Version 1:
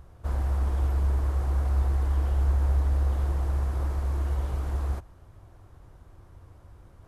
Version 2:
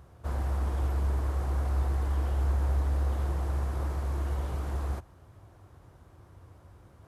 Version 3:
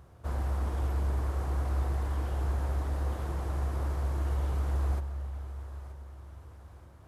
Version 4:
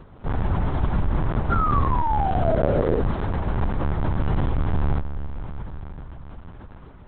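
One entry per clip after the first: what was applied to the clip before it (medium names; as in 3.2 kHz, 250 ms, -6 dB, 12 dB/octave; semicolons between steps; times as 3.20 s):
high-pass 73 Hz
thinning echo 927 ms, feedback 51%, high-pass 460 Hz, level -14 dB; reverberation RT60 5.3 s, pre-delay 90 ms, DRR 11 dB; trim -1 dB
painted sound fall, 1.51–3.02 s, 430–1400 Hz -34 dBFS; LPC vocoder at 8 kHz pitch kept; trim +8.5 dB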